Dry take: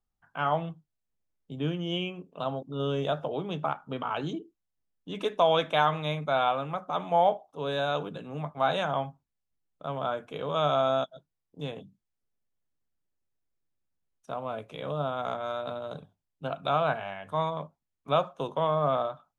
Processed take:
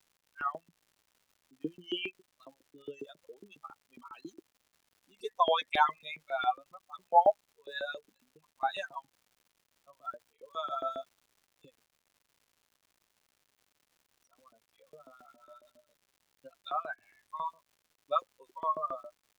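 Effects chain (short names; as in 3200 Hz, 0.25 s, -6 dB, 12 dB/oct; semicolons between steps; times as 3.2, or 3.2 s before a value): per-bin expansion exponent 3; LFO high-pass saw up 7.3 Hz 310–2600 Hz; crackle 230/s -55 dBFS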